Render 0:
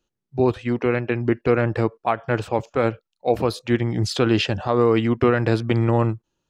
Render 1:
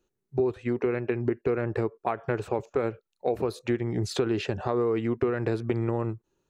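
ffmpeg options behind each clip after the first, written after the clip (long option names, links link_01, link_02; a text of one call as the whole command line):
ffmpeg -i in.wav -af "equalizer=frequency=400:width_type=o:width=0.33:gain=10,equalizer=frequency=3150:width_type=o:width=0.33:gain=-7,equalizer=frequency=5000:width_type=o:width=0.33:gain=-6,acompressor=threshold=-25dB:ratio=4" out.wav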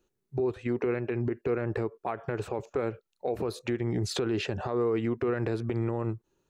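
ffmpeg -i in.wav -af "alimiter=limit=-21dB:level=0:latency=1:release=79,volume=1dB" out.wav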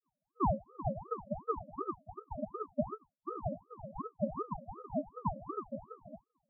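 ffmpeg -i in.wav -af "asuperpass=centerf=410:order=20:qfactor=5.8,aeval=exprs='val(0)*sin(2*PI*520*n/s+520*0.7/2.7*sin(2*PI*2.7*n/s))':channel_layout=same,volume=2.5dB" out.wav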